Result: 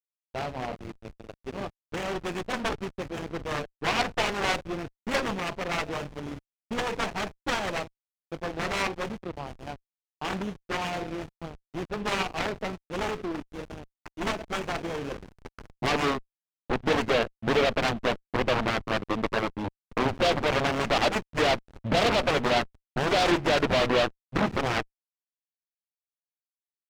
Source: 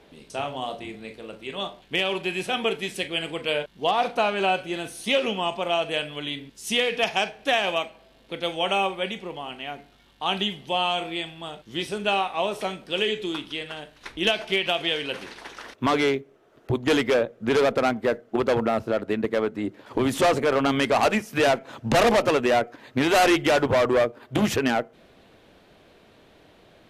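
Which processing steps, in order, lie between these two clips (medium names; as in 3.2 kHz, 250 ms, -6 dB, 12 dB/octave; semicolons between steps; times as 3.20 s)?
CVSD coder 16 kbps; hysteresis with a dead band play -27.5 dBFS; Chebyshev shaper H 4 -13 dB, 6 -8 dB, 7 -6 dB, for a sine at -13 dBFS; trim -5 dB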